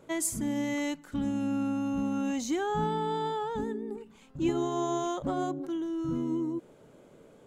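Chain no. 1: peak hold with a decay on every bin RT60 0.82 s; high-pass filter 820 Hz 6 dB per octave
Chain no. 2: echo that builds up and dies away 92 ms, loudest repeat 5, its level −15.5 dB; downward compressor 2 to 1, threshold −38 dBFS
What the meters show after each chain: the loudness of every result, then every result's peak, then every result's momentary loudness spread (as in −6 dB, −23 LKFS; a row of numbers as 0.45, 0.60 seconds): −36.0, −37.5 LKFS; −13.0, −23.0 dBFS; 10, 5 LU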